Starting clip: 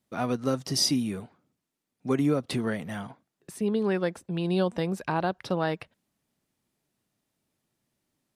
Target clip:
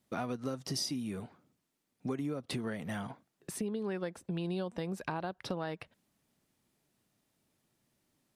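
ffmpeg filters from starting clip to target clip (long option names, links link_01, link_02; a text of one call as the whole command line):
ffmpeg -i in.wav -af "acompressor=threshold=-36dB:ratio=6,volume=2dB" out.wav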